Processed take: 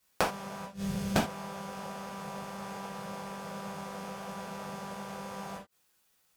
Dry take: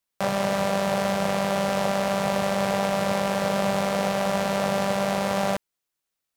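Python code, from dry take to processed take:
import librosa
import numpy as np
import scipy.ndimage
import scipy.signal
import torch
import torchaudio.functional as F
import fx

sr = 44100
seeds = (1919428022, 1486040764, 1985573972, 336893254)

y = fx.tone_stack(x, sr, knobs='10-0-1', at=(0.65, 1.16))
y = fx.gate_flip(y, sr, shuts_db=-22.0, range_db=-27)
y = fx.rev_gated(y, sr, seeds[0], gate_ms=110, shape='falling', drr_db=-5.5)
y = y * librosa.db_to_amplitude(6.0)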